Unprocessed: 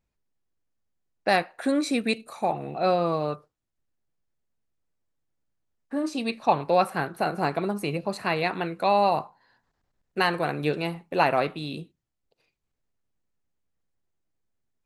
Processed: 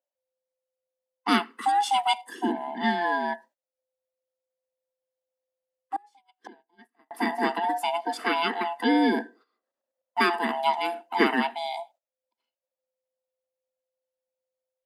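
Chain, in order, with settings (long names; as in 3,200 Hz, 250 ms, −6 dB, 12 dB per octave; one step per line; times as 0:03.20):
neighbouring bands swapped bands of 500 Hz
0:05.96–0:07.11: gate with flip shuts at −28 dBFS, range −30 dB
Chebyshev high-pass filter 220 Hz, order 6
noise gate −55 dBFS, range −15 dB
level +2 dB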